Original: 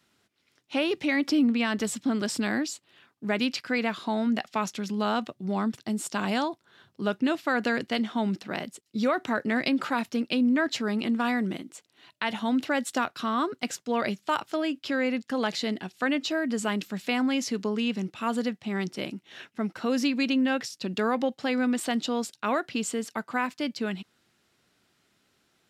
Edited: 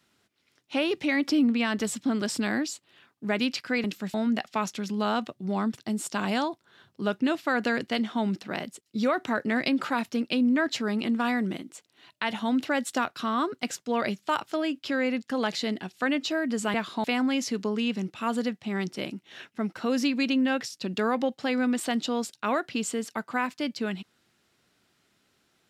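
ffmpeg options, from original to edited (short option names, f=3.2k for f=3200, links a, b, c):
-filter_complex "[0:a]asplit=5[a][b][c][d][e];[a]atrim=end=3.842[f];[b]atrim=start=16.738:end=17.042[g];[c]atrim=start=4.138:end=16.742[h];[d]atrim=start=3.838:end=4.142[i];[e]atrim=start=17.038[j];[f][g]acrossfade=d=0.004:c1=hsin:c2=hsin[k];[k][h]acrossfade=d=0.004:c1=hsin:c2=hsin[l];[l][i]acrossfade=d=0.004:c1=hsin:c2=hsin[m];[m][j]acrossfade=d=0.004:c1=hsin:c2=hsin"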